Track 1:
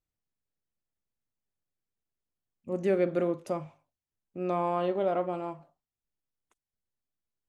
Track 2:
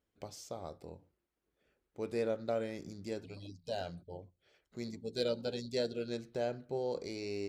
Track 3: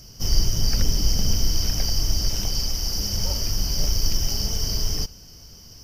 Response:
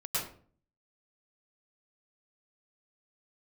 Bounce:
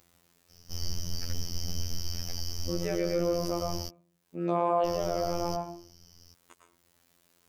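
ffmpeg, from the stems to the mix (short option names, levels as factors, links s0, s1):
-filter_complex "[0:a]acompressor=mode=upward:threshold=0.00631:ratio=2.5,highpass=f=150:p=1,volume=0.708,asplit=2[s0][s1];[s1]volume=0.473[s2];[2:a]adelay=500,volume=0.188,asplit=3[s3][s4][s5];[s3]atrim=end=3.89,asetpts=PTS-STARTPTS,afade=t=out:st=3.886:d=0.004:c=hsin[s6];[s4]atrim=start=3.89:end=4.85,asetpts=PTS-STARTPTS,volume=0[s7];[s5]atrim=start=4.85,asetpts=PTS-STARTPTS,afade=t=in:d=0.004:c=hsin[s8];[s6][s7][s8]concat=n=3:v=0:a=1[s9];[3:a]atrim=start_sample=2205[s10];[s2][s10]afir=irnorm=-1:irlink=0[s11];[s0][s9][s11]amix=inputs=3:normalize=0,acontrast=60,afftfilt=real='hypot(re,im)*cos(PI*b)':imag='0':win_size=2048:overlap=0.75,alimiter=limit=0.178:level=0:latency=1:release=89"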